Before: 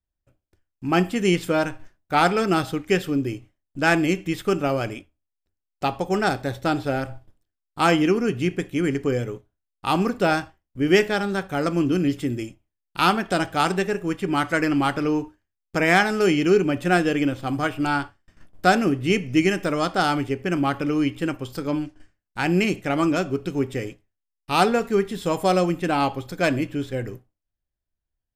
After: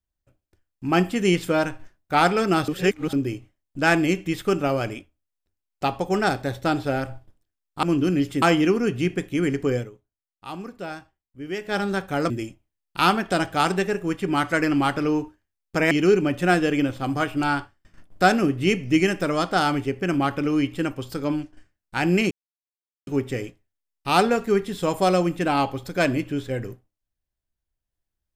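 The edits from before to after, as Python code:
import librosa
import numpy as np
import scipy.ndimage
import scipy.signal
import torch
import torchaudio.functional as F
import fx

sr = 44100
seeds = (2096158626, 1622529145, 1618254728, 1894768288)

y = fx.edit(x, sr, fx.reverse_span(start_s=2.68, length_s=0.45),
    fx.fade_down_up(start_s=9.18, length_s=2.0, db=-13.5, fade_s=0.13),
    fx.move(start_s=11.71, length_s=0.59, to_s=7.83),
    fx.cut(start_s=15.91, length_s=0.43),
    fx.silence(start_s=22.74, length_s=0.76), tone=tone)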